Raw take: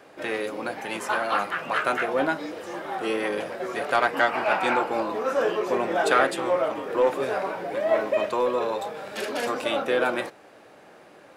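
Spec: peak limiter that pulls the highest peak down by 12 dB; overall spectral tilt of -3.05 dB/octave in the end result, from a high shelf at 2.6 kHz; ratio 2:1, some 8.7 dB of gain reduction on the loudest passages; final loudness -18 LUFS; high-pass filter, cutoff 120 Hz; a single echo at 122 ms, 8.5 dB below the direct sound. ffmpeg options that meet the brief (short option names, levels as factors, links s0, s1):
-af "highpass=120,highshelf=f=2600:g=4,acompressor=threshold=0.0251:ratio=2,alimiter=level_in=1.5:limit=0.0631:level=0:latency=1,volume=0.668,aecho=1:1:122:0.376,volume=7.5"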